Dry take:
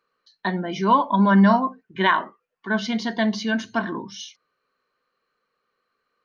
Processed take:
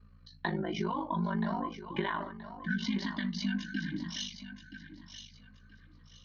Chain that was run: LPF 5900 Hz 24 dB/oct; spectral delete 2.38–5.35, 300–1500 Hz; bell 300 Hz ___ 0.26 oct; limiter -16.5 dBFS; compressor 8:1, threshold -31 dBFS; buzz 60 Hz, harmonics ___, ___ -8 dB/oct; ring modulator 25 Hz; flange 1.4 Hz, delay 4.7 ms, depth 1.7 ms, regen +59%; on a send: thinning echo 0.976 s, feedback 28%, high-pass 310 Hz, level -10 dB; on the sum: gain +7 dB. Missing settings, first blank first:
+11.5 dB, 4, -56 dBFS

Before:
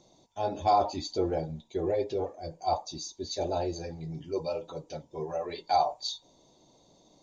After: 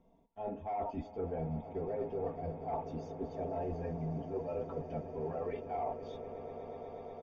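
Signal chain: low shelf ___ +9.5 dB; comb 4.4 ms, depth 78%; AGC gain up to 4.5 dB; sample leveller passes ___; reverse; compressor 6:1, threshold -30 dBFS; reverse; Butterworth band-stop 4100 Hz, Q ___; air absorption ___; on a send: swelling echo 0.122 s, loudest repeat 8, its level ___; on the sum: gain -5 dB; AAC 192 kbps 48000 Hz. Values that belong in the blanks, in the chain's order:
93 Hz, 1, 2.2, 470 m, -17 dB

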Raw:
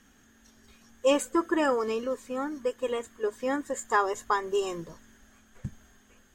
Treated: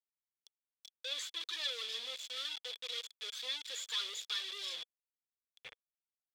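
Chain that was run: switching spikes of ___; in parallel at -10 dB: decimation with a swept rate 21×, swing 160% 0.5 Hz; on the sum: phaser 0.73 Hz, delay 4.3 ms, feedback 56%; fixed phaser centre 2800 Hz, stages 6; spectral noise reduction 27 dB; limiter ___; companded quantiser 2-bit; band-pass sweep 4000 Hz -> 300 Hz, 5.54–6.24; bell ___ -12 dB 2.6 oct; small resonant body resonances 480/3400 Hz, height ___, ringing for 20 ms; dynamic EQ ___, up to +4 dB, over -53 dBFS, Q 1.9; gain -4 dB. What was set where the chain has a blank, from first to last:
-29 dBFS, -13 dBFS, 270 Hz, 15 dB, 2600 Hz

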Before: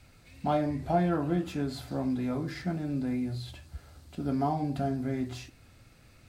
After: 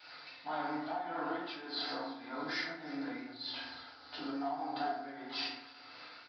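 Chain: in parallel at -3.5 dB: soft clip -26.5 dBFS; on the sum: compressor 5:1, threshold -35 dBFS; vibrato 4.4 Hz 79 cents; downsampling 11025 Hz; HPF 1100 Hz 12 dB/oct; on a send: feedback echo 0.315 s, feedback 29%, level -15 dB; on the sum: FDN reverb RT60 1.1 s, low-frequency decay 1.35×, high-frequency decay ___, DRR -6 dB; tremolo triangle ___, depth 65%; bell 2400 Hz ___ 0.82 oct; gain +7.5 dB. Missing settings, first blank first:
0.5×, 1.7 Hz, -7.5 dB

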